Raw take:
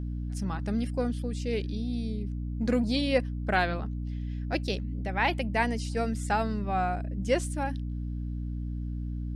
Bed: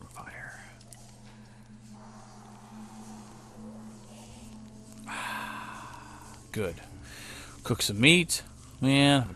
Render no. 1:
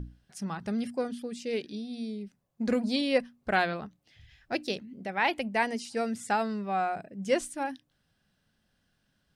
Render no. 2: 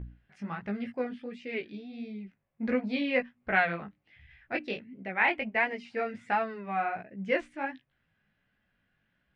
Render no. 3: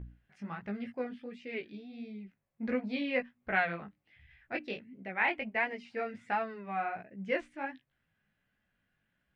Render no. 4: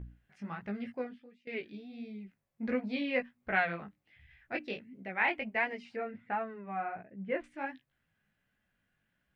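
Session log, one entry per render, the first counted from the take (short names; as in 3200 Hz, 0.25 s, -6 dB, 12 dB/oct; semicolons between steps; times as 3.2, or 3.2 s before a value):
notches 60/120/180/240/300 Hz
synth low-pass 2200 Hz, resonance Q 2.6; chorus 1.4 Hz, delay 15 ms, depth 5.2 ms
gain -4 dB
0.98–1.47 fade out quadratic, to -19 dB; 5.96–7.44 air absorption 500 m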